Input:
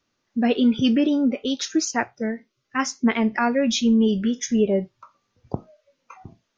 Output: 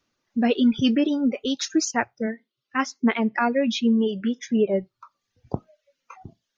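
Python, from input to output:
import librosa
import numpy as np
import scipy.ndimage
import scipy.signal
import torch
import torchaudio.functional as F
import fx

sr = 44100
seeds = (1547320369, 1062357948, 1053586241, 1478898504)

y = fx.dereverb_blind(x, sr, rt60_s=0.73)
y = fx.bandpass_edges(y, sr, low_hz=160.0, high_hz=fx.line((2.26, 4900.0), (4.68, 3100.0)), at=(2.26, 4.68), fade=0.02)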